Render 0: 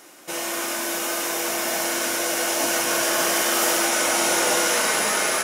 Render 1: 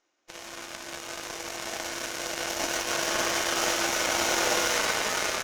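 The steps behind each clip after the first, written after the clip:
elliptic low-pass filter 6,700 Hz
parametric band 150 Hz −11.5 dB 0.73 octaves
harmonic generator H 3 −34 dB, 6 −27 dB, 7 −18 dB, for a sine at −10 dBFS
level −1.5 dB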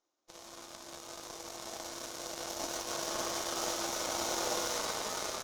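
flat-topped bell 2,100 Hz −8 dB 1.2 octaves
level −7.5 dB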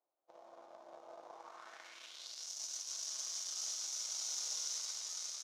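band-pass filter sweep 680 Hz → 5,900 Hz, 0:01.24–0:02.47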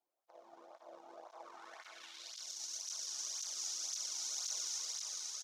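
single-tap delay 236 ms −5.5 dB
through-zero flanger with one copy inverted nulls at 1.9 Hz, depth 2 ms
level +2 dB

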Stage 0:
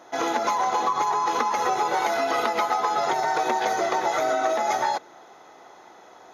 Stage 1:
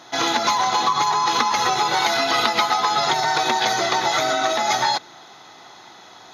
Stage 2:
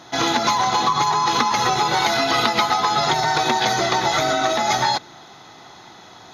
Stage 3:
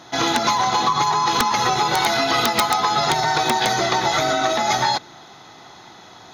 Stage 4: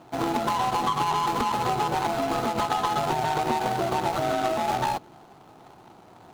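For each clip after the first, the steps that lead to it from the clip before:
octave-band graphic EQ 125/500/4,000 Hz +7/−8/+11 dB; level +5 dB
low-shelf EQ 210 Hz +11.5 dB
wrap-around overflow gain 6.5 dB
running median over 25 samples; level −3 dB

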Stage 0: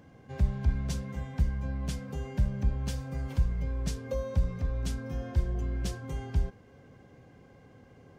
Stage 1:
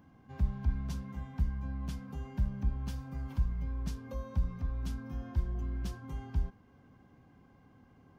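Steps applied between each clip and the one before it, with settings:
graphic EQ with 10 bands 125 Hz −4 dB, 250 Hz +3 dB, 500 Hz −11 dB, 1,000 Hz +4 dB, 2,000 Hz −5 dB, 4,000 Hz −3 dB, 8,000 Hz −9 dB
level −3 dB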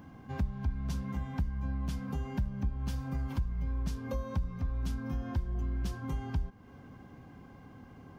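downward compressor 3 to 1, threshold −41 dBFS, peak gain reduction 13 dB
level +9 dB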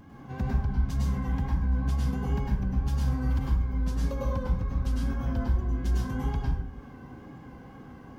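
tape wow and flutter 74 cents
dense smooth reverb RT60 0.65 s, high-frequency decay 0.55×, pre-delay 90 ms, DRR −4 dB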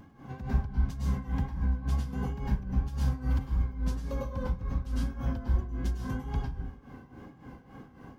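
amplitude tremolo 3.6 Hz, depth 74%

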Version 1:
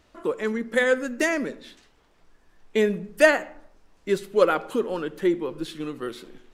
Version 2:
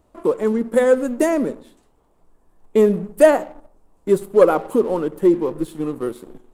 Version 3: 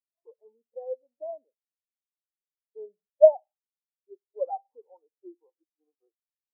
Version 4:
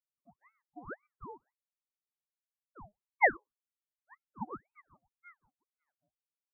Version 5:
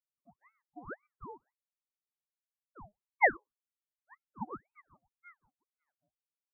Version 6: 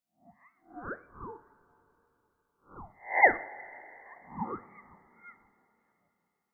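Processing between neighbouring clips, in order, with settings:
flat-topped bell 3,000 Hz −14 dB 2.4 octaves; leveller curve on the samples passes 1; level +4 dB
resonant band-pass 790 Hz, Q 4; every bin expanded away from the loudest bin 2.5 to 1; level +3.5 dB
ring modulator whose carrier an LFO sweeps 990 Hz, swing 80%, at 1.9 Hz; level −7.5 dB
no processing that can be heard
peak hold with a rise ahead of every peak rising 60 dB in 0.32 s; coupled-rooms reverb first 0.4 s, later 3.8 s, from −17 dB, DRR 9 dB; level +2.5 dB

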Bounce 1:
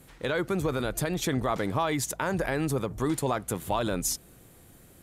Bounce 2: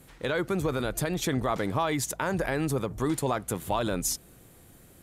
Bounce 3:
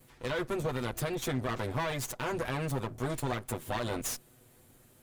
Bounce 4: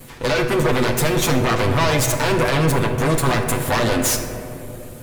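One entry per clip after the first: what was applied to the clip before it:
no processing that can be heard
lower of the sound and its delayed copy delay 8.1 ms; level −4.5 dB
sine wavefolder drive 9 dB, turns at −20.5 dBFS; convolution reverb RT60 2.8 s, pre-delay 3 ms, DRR 4.5 dB; level +5.5 dB

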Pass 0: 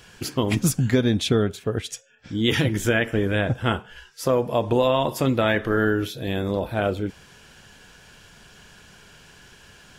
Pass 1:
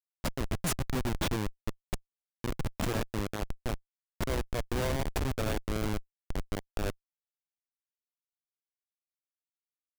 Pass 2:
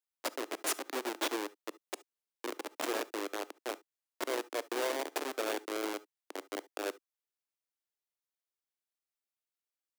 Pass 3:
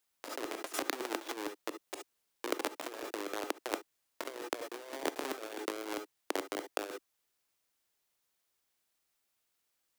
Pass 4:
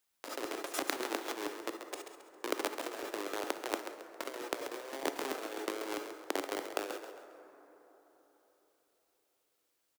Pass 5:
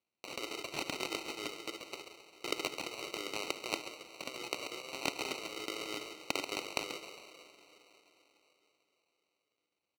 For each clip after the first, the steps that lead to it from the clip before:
bass and treble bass −1 dB, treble +11 dB; time-frequency box erased 0:01.64–0:02.67, 730–6,200 Hz; comparator with hysteresis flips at −16 dBFS; level −5 dB
Butterworth high-pass 300 Hz 48 dB per octave; on a send at −19 dB: convolution reverb, pre-delay 3 ms
compressor whose output falls as the input rises −42 dBFS, ratio −0.5; level +5.5 dB
on a send: echo with shifted repeats 135 ms, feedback 36%, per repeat +38 Hz, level −9 dB; on the sum: dense smooth reverb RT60 4.1 s, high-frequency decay 0.4×, DRR 11 dB
adaptive Wiener filter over 9 samples; decimation without filtering 26×; meter weighting curve D; level −3.5 dB

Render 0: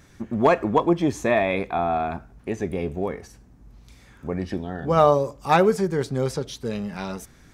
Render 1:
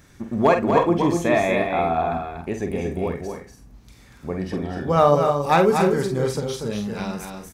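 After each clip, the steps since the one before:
high-shelf EQ 11,000 Hz +5.5 dB
double-tracking delay 48 ms −7 dB
on a send: loudspeakers that aren't time-aligned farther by 82 metres −6 dB, 94 metres −12 dB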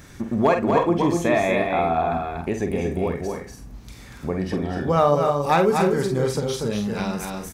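downward compressor 1.5 to 1, threshold −37 dBFS, peak gain reduction 9.5 dB
level +7 dB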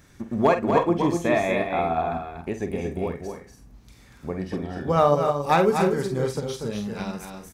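expander for the loud parts 1.5 to 1, over −33 dBFS

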